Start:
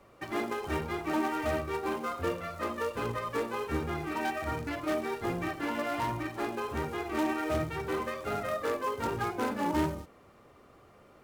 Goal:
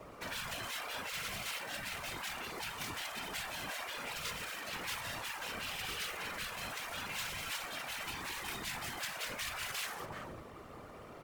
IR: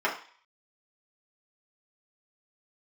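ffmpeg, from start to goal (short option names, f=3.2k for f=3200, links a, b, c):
-filter_complex "[0:a]asplit=2[a][b];[b]adelay=379,volume=-14dB,highshelf=f=4k:g=-8.53[c];[a][c]amix=inputs=2:normalize=0,afftfilt=real='re*lt(hypot(re,im),0.0224)':imag='im*lt(hypot(re,im),0.0224)':win_size=1024:overlap=0.75,afftfilt=real='hypot(re,im)*cos(2*PI*random(0))':imag='hypot(re,im)*sin(2*PI*random(1))':win_size=512:overlap=0.75,volume=12.5dB"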